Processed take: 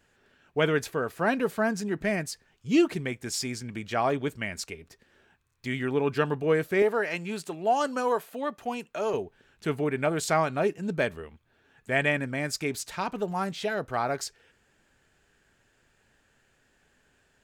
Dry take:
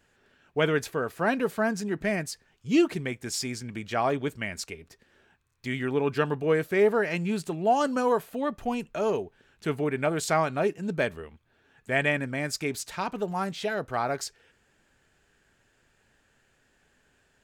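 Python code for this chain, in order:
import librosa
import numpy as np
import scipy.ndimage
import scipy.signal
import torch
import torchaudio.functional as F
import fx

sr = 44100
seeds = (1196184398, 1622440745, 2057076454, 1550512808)

y = fx.highpass(x, sr, hz=410.0, slope=6, at=(6.82, 9.14))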